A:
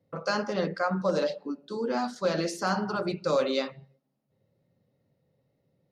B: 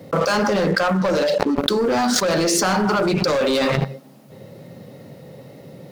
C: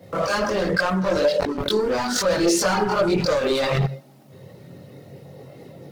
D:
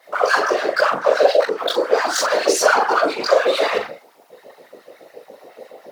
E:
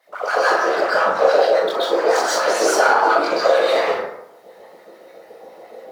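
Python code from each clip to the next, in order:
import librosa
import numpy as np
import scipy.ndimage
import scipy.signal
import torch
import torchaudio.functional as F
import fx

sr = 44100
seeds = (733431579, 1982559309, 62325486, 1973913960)

y1 = scipy.signal.sosfilt(scipy.signal.butter(2, 140.0, 'highpass', fs=sr, output='sos'), x)
y1 = fx.leveller(y1, sr, passes=3)
y1 = fx.env_flatten(y1, sr, amount_pct=100)
y1 = y1 * librosa.db_to_amplitude(-1.0)
y2 = fx.chorus_voices(y1, sr, voices=6, hz=0.74, base_ms=22, depth_ms=1.7, mix_pct=60)
y3 = fx.whisperise(y2, sr, seeds[0])
y3 = fx.filter_lfo_highpass(y3, sr, shape='sine', hz=7.1, low_hz=450.0, high_hz=1600.0, q=2.5)
y3 = fx.doubler(y3, sr, ms=41.0, db=-8)
y3 = y3 * librosa.db_to_amplitude(1.5)
y4 = fx.rev_plate(y3, sr, seeds[1], rt60_s=0.75, hf_ratio=0.45, predelay_ms=115, drr_db=-9.0)
y4 = y4 * librosa.db_to_amplitude(-9.0)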